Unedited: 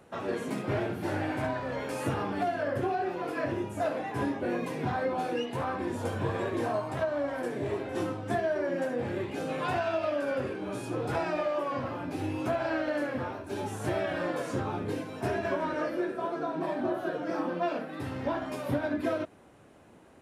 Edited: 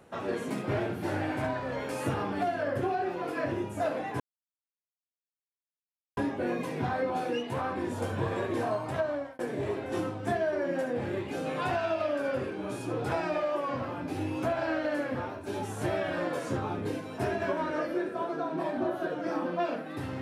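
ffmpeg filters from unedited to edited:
ffmpeg -i in.wav -filter_complex "[0:a]asplit=3[link_01][link_02][link_03];[link_01]atrim=end=4.2,asetpts=PTS-STARTPTS,afade=type=out:start_time=4.196:duration=0.004:curve=hsin,apad=pad_dur=1.97[link_04];[link_02]atrim=start=4.2:end=7.42,asetpts=PTS-STARTPTS,afade=type=in:duration=0.004:curve=hsin,afade=type=out:start_time=2.92:duration=0.3[link_05];[link_03]atrim=start=7.42,asetpts=PTS-STARTPTS,afade=type=in:duration=0.004:curve=hsin[link_06];[link_04][link_05][link_06]concat=n=3:v=0:a=1" out.wav

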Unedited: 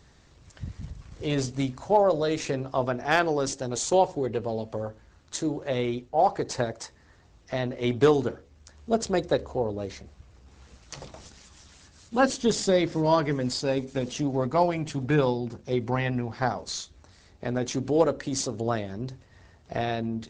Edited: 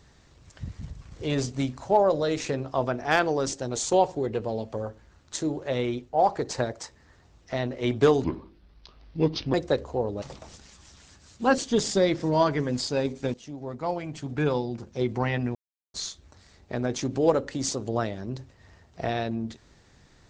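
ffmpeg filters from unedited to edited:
ffmpeg -i in.wav -filter_complex "[0:a]asplit=7[link_01][link_02][link_03][link_04][link_05][link_06][link_07];[link_01]atrim=end=8.244[link_08];[link_02]atrim=start=8.24:end=9.15,asetpts=PTS-STARTPTS,asetrate=30870,aresample=44100[link_09];[link_03]atrim=start=9.146:end=9.832[link_10];[link_04]atrim=start=10.938:end=14.06,asetpts=PTS-STARTPTS,afade=type=out:start_time=3.118:duration=0.004:curve=hsin:silence=0.177828[link_11];[link_05]atrim=start=14.06:end=16.27,asetpts=PTS-STARTPTS,afade=type=in:duration=1.65:silence=0.177828,afade=type=out:start_time=2.206:duration=0.004:curve=hsin[link_12];[link_06]atrim=start=16.27:end=16.66,asetpts=PTS-STARTPTS,volume=0[link_13];[link_07]atrim=start=16.66,asetpts=PTS-STARTPTS,afade=type=in:duration=0.004:curve=hsin[link_14];[link_08][link_09]acrossfade=duration=0.004:curve1=hsin:curve2=hsin[link_15];[link_15][link_10]acrossfade=duration=0.004:curve1=hsin:curve2=hsin[link_16];[link_11][link_12][link_13][link_14]concat=n=4:v=0:a=1[link_17];[link_16][link_17]acrossfade=duration=0.004:curve1=hsin:curve2=hsin" out.wav

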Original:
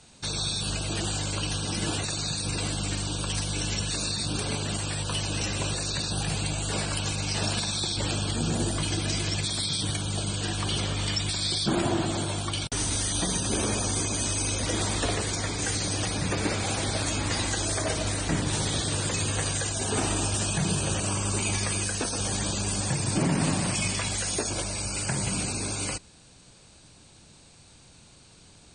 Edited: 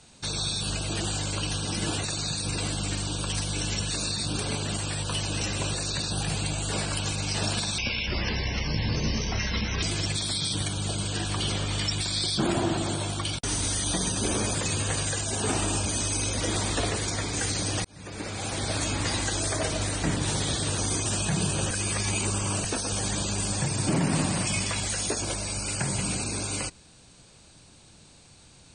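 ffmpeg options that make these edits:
ffmpeg -i in.wav -filter_complex "[0:a]asplit=10[link_01][link_02][link_03][link_04][link_05][link_06][link_07][link_08][link_09][link_10];[link_01]atrim=end=7.784[link_11];[link_02]atrim=start=7.78:end=9.11,asetpts=PTS-STARTPTS,asetrate=28665,aresample=44100,atrim=end_sample=90235,asetpts=PTS-STARTPTS[link_12];[link_03]atrim=start=9.106:end=13.832[link_13];[link_04]atrim=start=19.028:end=20.342[link_14];[link_05]atrim=start=14.108:end=16.1,asetpts=PTS-STARTPTS,afade=type=out:start_time=1.988:duration=0.004:curve=hsin[link_15];[link_06]atrim=start=16.1:end=19.032,asetpts=PTS-STARTPTS,afade=type=in:duration=0.93[link_16];[link_07]atrim=start=13.828:end=14.112[link_17];[link_08]atrim=start=20.338:end=20.992[link_18];[link_09]atrim=start=20.988:end=21.932,asetpts=PTS-STARTPTS,areverse[link_19];[link_10]atrim=start=21.928[link_20];[link_11][link_12]acrossfade=duration=0.004:curve1=hsin:curve2=hsin[link_21];[link_21][link_13]acrossfade=duration=0.004:curve1=hsin:curve2=hsin[link_22];[link_22][link_14]acrossfade=duration=0.004:curve1=hsin:curve2=hsin[link_23];[link_15][link_16]concat=n=2:v=0:a=1[link_24];[link_23][link_24]acrossfade=duration=0.004:curve1=hsin:curve2=hsin[link_25];[link_25][link_17]acrossfade=duration=0.004:curve1=hsin:curve2=hsin[link_26];[link_26][link_18]acrossfade=duration=0.004:curve1=hsin:curve2=hsin[link_27];[link_27][link_19]acrossfade=duration=0.004:curve1=hsin:curve2=hsin[link_28];[link_28][link_20]acrossfade=duration=0.004:curve1=hsin:curve2=hsin" out.wav

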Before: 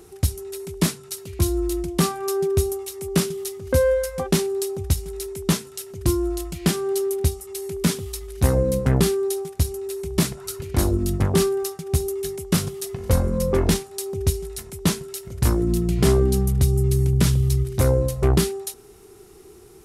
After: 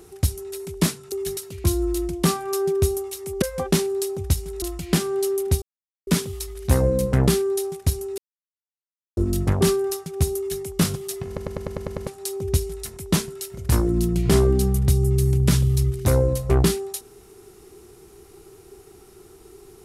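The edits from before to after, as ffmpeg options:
ffmpeg -i in.wav -filter_complex "[0:a]asplit=17[link_01][link_02][link_03][link_04][link_05][link_06][link_07][link_08][link_09][link_10][link_11][link_12][link_13][link_14][link_15][link_16][link_17];[link_01]atrim=end=1.122[link_18];[link_02]atrim=start=12.098:end=12.352[link_19];[link_03]atrim=start=1.118:end=3.172[link_20];[link_04]atrim=start=4.018:end=5.222[link_21];[link_05]atrim=start=6.348:end=7.35,asetpts=PTS-STARTPTS,afade=type=out:start_time=0.998:duration=0.004:curve=hsin[link_22];[link_06]atrim=start=7.35:end=7.8,asetpts=PTS-STARTPTS,volume=0[link_23];[link_07]atrim=start=7.8:end=9.91,asetpts=PTS-STARTPTS,afade=type=in:duration=0.004:curve=hsin,afade=type=out:start_time=2.106:duration=0.004:curve=hsin[link_24];[link_08]atrim=start=9.91:end=10.9,asetpts=PTS-STARTPTS,volume=0[link_25];[link_09]atrim=start=10.9:end=13.102,asetpts=PTS-STARTPTS,afade=type=in:duration=0.004:curve=hsin[link_26];[link_10]atrim=start=12.998:end=13.102[link_27];[link_11]atrim=start=12.998:end=13.102[link_28];[link_12]atrim=start=12.998:end=13.102[link_29];[link_13]atrim=start=12.998:end=13.102[link_30];[link_14]atrim=start=12.998:end=13.102[link_31];[link_15]atrim=start=12.998:end=13.102[link_32];[link_16]atrim=start=12.998:end=13.102[link_33];[link_17]atrim=start=13.798[link_34];[link_18][link_19]acrossfade=duration=0.004:curve1=hsin:curve2=hsin[link_35];[link_35][link_20]acrossfade=duration=0.004:curve1=hsin:curve2=hsin[link_36];[link_36][link_21]acrossfade=duration=0.004:curve1=hsin:curve2=hsin[link_37];[link_22][link_23][link_24][link_25][link_26]concat=n=5:v=0:a=1[link_38];[link_37][link_38]acrossfade=duration=0.004:curve1=hsin:curve2=hsin[link_39];[link_39][link_27]acrossfade=duration=0.004:curve1=hsin:curve2=hsin[link_40];[link_40][link_28]acrossfade=duration=0.004:curve1=hsin:curve2=hsin[link_41];[link_41][link_29]acrossfade=duration=0.004:curve1=hsin:curve2=hsin[link_42];[link_42][link_30]acrossfade=duration=0.004:curve1=hsin:curve2=hsin[link_43];[link_43][link_31]acrossfade=duration=0.004:curve1=hsin:curve2=hsin[link_44];[link_44][link_32]acrossfade=duration=0.004:curve1=hsin:curve2=hsin[link_45];[link_45][link_33]acrossfade=duration=0.004:curve1=hsin:curve2=hsin[link_46];[link_46][link_34]acrossfade=duration=0.004:curve1=hsin:curve2=hsin" out.wav

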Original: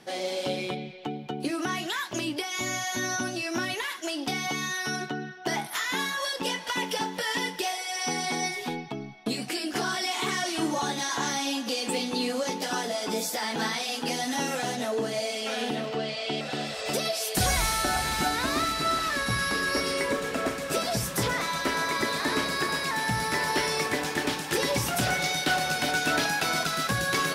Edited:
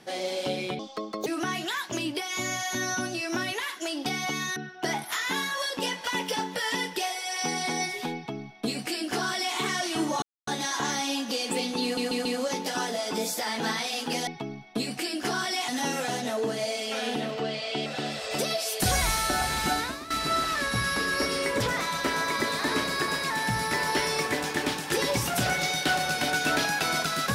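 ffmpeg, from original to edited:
ffmpeg -i in.wav -filter_complex "[0:a]asplit=12[link_01][link_02][link_03][link_04][link_05][link_06][link_07][link_08][link_09][link_10][link_11][link_12];[link_01]atrim=end=0.794[link_13];[link_02]atrim=start=0.79:end=1.48,asetpts=PTS-STARTPTS,asetrate=64386,aresample=44100[link_14];[link_03]atrim=start=1.476:end=4.782[link_15];[link_04]atrim=start=5.188:end=10.85,asetpts=PTS-STARTPTS,afade=type=out:start_time=5.658:duration=0.004:curve=hsin,apad=pad_dur=0.25[link_16];[link_05]atrim=start=10.85:end=12.352,asetpts=PTS-STARTPTS,afade=type=in:duration=0.004:curve=hsin[link_17];[link_06]atrim=start=12.208:end=12.352[link_18];[link_07]atrim=start=12.208:end=12.352[link_19];[link_08]atrim=start=12.208:end=14.232[link_20];[link_09]atrim=start=8.778:end=10.192[link_21];[link_10]atrim=start=14.228:end=18.65,asetpts=PTS-STARTPTS,afade=type=out:start_time=4.112:duration=0.31:curve=qua:silence=0.16788[link_22];[link_11]atrim=start=18.65:end=20.152,asetpts=PTS-STARTPTS,afade=type=in:duration=0.004:curve=hsin:silence=0.16788[link_23];[link_12]atrim=start=21.208[link_24];[link_13][link_14]acrossfade=duration=0.004:curve1=hsin:curve2=hsin[link_25];[link_25][link_15]acrossfade=duration=0.004:curve1=hsin:curve2=hsin[link_26];[link_16][link_17]concat=n=2:v=0:a=1[link_27];[link_26][link_27]acrossfade=duration=0.004:curve1=hsin:curve2=hsin[link_28];[link_28][link_18]acrossfade=duration=0.004:curve1=hsin:curve2=hsin[link_29];[link_29][link_19]acrossfade=duration=0.004:curve1=hsin:curve2=hsin[link_30];[link_30][link_20]acrossfade=duration=0.004:curve1=hsin:curve2=hsin[link_31];[link_31][link_21]acrossfade=duration=0.004:curve1=hsin:curve2=hsin[link_32];[link_22][link_23]concat=n=2:v=0:a=1[link_33];[link_32][link_33]acrossfade=duration=0.004:curve1=hsin:curve2=hsin[link_34];[link_34][link_24]acrossfade=duration=0.004:curve1=hsin:curve2=hsin" out.wav

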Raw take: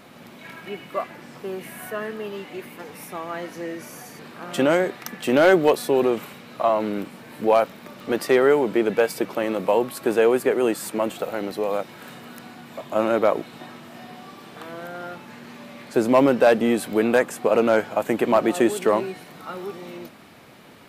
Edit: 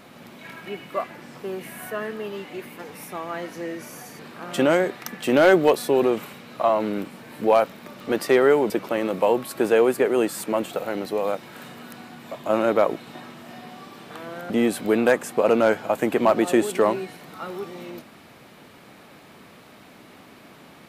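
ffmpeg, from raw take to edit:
ffmpeg -i in.wav -filter_complex "[0:a]asplit=3[link_01][link_02][link_03];[link_01]atrim=end=8.702[link_04];[link_02]atrim=start=9.158:end=14.962[link_05];[link_03]atrim=start=16.568[link_06];[link_04][link_05]acrossfade=duration=0.004:curve1=hsin:curve2=hsin[link_07];[link_07][link_06]acrossfade=duration=0.004:curve1=hsin:curve2=hsin" out.wav

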